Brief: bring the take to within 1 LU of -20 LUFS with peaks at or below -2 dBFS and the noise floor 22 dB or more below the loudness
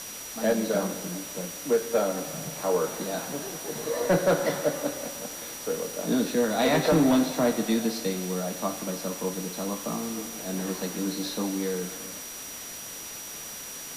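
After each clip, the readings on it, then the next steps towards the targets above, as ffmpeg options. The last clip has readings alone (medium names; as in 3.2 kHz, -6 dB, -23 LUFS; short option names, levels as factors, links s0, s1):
steady tone 5.8 kHz; tone level -41 dBFS; noise floor -39 dBFS; noise floor target -51 dBFS; loudness -28.5 LUFS; peak level -14.0 dBFS; loudness target -20.0 LUFS
-> -af "bandreject=f=5800:w=30"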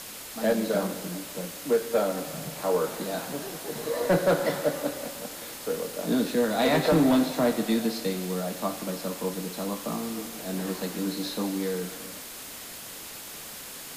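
steady tone not found; noise floor -41 dBFS; noise floor target -51 dBFS
-> -af "afftdn=nr=10:nf=-41"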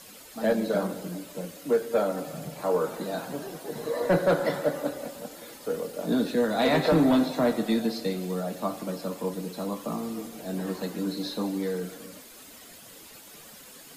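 noise floor -48 dBFS; noise floor target -51 dBFS
-> -af "afftdn=nr=6:nf=-48"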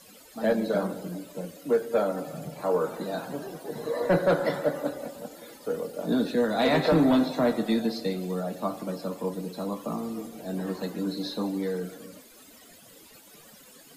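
noise floor -52 dBFS; loudness -28.5 LUFS; peak level -14.5 dBFS; loudness target -20.0 LUFS
-> -af "volume=2.66"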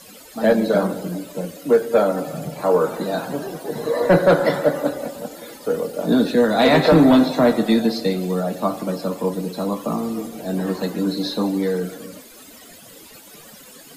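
loudness -20.0 LUFS; peak level -6.0 dBFS; noise floor -44 dBFS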